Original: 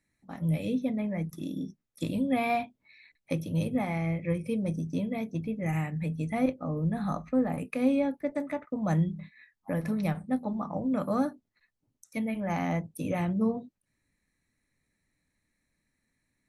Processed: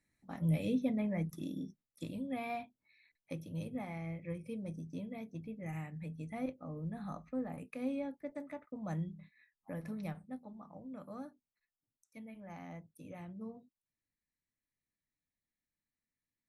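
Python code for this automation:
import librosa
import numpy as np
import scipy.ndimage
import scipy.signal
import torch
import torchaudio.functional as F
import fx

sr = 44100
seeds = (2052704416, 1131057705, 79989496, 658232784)

y = fx.gain(x, sr, db=fx.line((1.26, -3.5), (2.18, -12.0), (10.09, -12.0), (10.49, -18.5)))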